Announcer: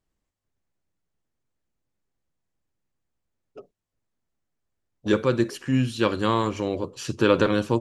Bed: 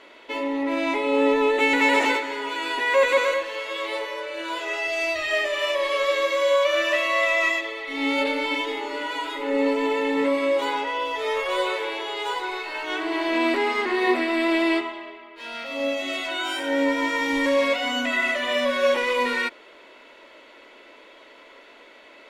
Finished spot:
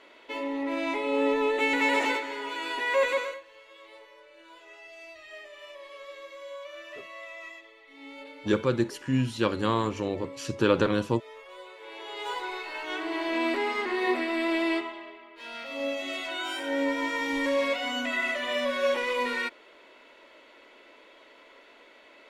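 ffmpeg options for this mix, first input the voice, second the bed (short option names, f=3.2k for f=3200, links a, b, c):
-filter_complex "[0:a]adelay=3400,volume=-3.5dB[a];[1:a]volume=10.5dB,afade=t=out:st=3.06:d=0.35:silence=0.158489,afade=t=in:st=11.77:d=0.56:silence=0.158489[b];[a][b]amix=inputs=2:normalize=0"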